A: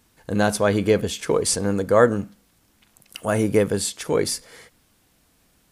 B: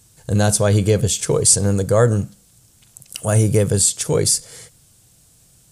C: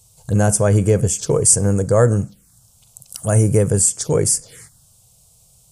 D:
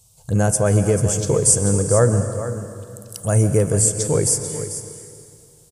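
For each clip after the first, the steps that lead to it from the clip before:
graphic EQ 125/250/1000/2000/8000 Hz +12/-8/-5/-6/+11 dB; in parallel at +2 dB: limiter -12 dBFS, peak gain reduction 10.5 dB; on the sum: gain -2.5 dB
envelope phaser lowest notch 280 Hz, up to 3900 Hz, full sweep at -15.5 dBFS; gain +1 dB
echo 0.441 s -11.5 dB; plate-style reverb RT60 2.5 s, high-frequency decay 0.9×, pre-delay 0.115 s, DRR 9 dB; gain -2 dB

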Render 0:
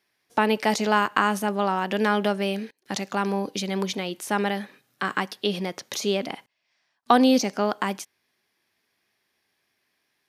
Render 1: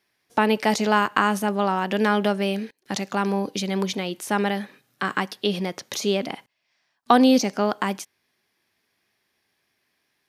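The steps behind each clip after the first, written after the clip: low shelf 190 Hz +3.5 dB; gain +1 dB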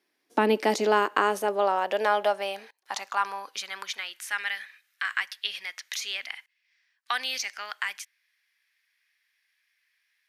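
high-pass sweep 290 Hz -> 1900 Hz, 0.46–4.43; gain -4.5 dB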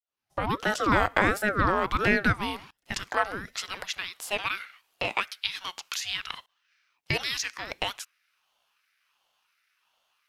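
opening faded in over 1.03 s; ring modulator with a swept carrier 690 Hz, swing 55%, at 1.4 Hz; gain +3.5 dB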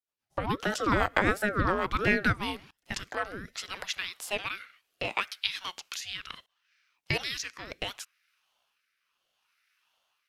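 rotary speaker horn 7.5 Hz, later 0.7 Hz, at 1.99

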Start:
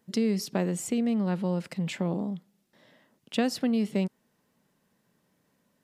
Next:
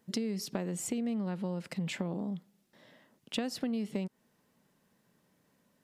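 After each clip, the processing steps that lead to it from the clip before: compressor 6:1, threshold -31 dBFS, peak gain reduction 10 dB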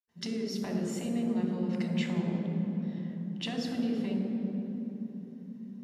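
reverb RT60 3.5 s, pre-delay 79 ms; gain -1.5 dB

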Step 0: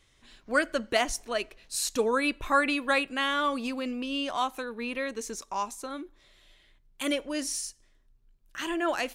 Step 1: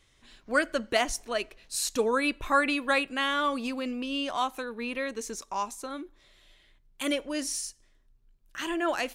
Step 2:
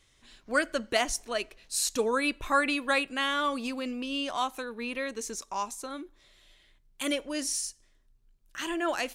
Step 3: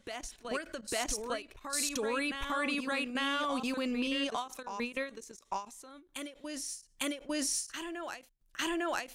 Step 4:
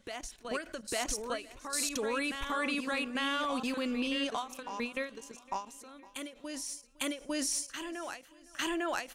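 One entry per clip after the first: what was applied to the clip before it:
nothing audible
bell 7800 Hz +3.5 dB 2 oct; gain -1.5 dB
level quantiser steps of 18 dB; reverse echo 0.852 s -7 dB; ending taper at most 190 dB/s; gain +3 dB
feedback echo 0.51 s, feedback 56%, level -21.5 dB

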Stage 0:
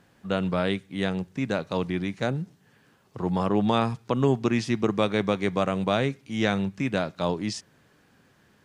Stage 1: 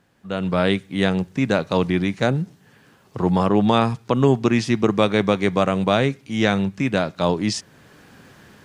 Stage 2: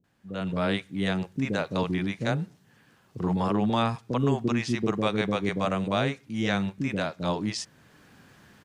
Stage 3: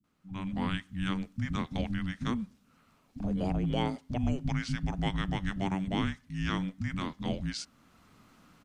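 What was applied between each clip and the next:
AGC gain up to 16 dB; gain -2.5 dB
bands offset in time lows, highs 40 ms, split 450 Hz; gain -6.5 dB
frequency shift -380 Hz; gain -5 dB

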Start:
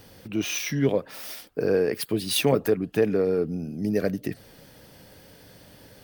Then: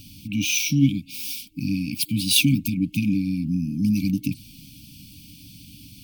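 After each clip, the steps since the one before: FFT band-reject 310–2200 Hz; gain +7 dB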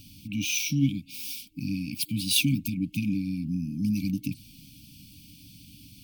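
dynamic EQ 660 Hz, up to -4 dB, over -36 dBFS, Q 0.79; gain -5 dB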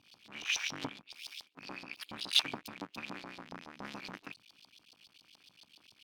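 cycle switcher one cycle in 3, muted; LFO band-pass saw up 7.1 Hz 840–4600 Hz; gain +3.5 dB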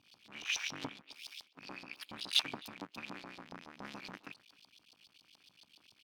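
speakerphone echo 0.26 s, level -21 dB; gain -2.5 dB

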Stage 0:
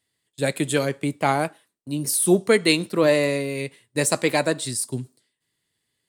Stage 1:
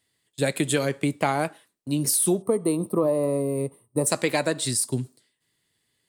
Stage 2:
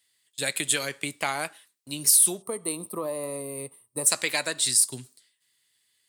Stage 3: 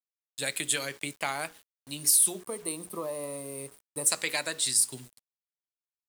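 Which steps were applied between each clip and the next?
spectral gain 2.42–4.07, 1300–8200 Hz -21 dB; compressor 6:1, threshold -22 dBFS, peak gain reduction 10.5 dB; gain +3 dB
tilt shelf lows -9.5 dB; gain -4.5 dB
notches 60/120/180/240/300/360/420/480 Hz; bit-crush 8-bit; gain -3.5 dB

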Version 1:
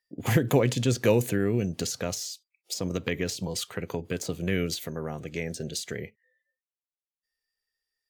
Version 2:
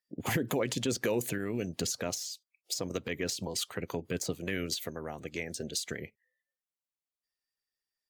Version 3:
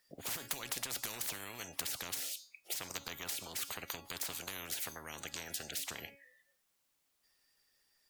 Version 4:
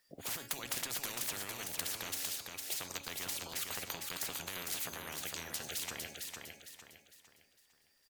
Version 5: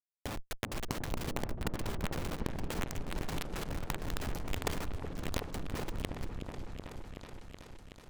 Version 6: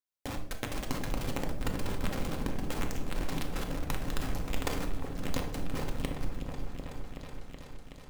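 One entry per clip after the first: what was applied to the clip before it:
harmonic-percussive split harmonic -13 dB; limiter -20 dBFS, peak gain reduction 9.5 dB
resonator 280 Hz, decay 0.31 s, harmonics all, mix 50%; spectral compressor 10:1; gain +7 dB
feedback echo 0.455 s, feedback 37%, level -4.5 dB
Schmitt trigger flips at -32.5 dBFS; negative-ratio compressor -47 dBFS, ratio -0.5; repeats that get brighter 0.374 s, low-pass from 400 Hz, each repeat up 1 oct, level -3 dB; gain +12 dB
block floating point 5-bit; on a send at -3 dB: reverb RT60 0.75 s, pre-delay 4 ms

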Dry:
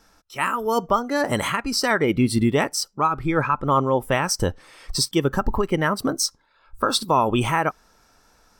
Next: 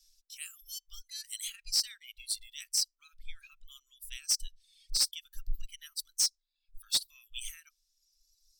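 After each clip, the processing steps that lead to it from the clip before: inverse Chebyshev band-stop 100–920 Hz, stop band 70 dB; reverb removal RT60 1.7 s; in parallel at -2 dB: wavefolder -19 dBFS; on the sum: gain -7.5 dB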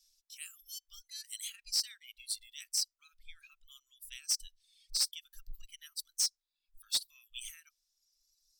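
low shelf 220 Hz -9.5 dB; gain -3 dB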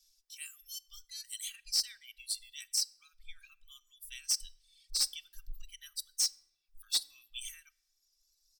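comb 2.6 ms, depth 52%; on a send at -20 dB: reverb RT60 0.85 s, pre-delay 7 ms

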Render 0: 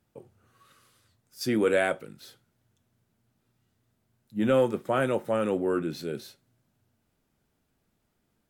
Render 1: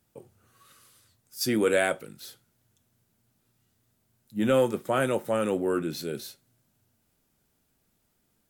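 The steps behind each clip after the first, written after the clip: high shelf 5000 Hz +10 dB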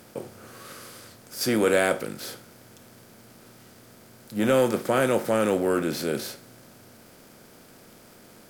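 per-bin compression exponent 0.6; crackle 140/s -43 dBFS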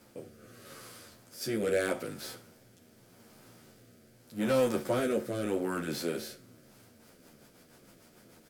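wavefolder -13 dBFS; rotary speaker horn 0.8 Hz, later 6.7 Hz, at 6.47; endless flanger 10.8 ms -2.7 Hz; gain -2 dB

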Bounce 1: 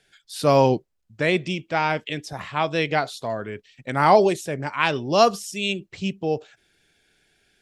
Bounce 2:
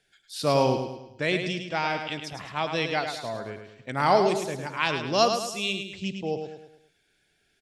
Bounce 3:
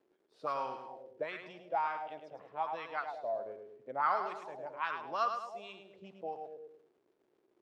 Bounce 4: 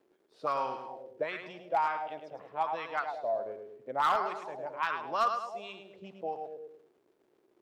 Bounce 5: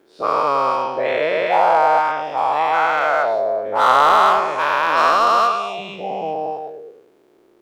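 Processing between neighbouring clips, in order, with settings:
dynamic EQ 4700 Hz, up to +6 dB, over -41 dBFS, Q 0.94; on a send: feedback echo 0.106 s, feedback 44%, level -7 dB; on the sum: gain -6 dB
crackle 420/s -39 dBFS; auto-wah 360–1300 Hz, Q 4.5, up, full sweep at -21.5 dBFS
hard clip -25.5 dBFS, distortion -19 dB; gain +4.5 dB
spectral dilation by 0.48 s; gain +7.5 dB

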